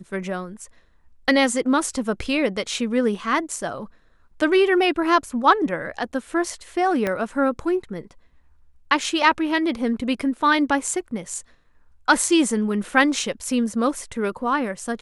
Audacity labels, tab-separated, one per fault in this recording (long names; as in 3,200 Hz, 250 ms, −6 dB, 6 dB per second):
7.070000	7.070000	click −11 dBFS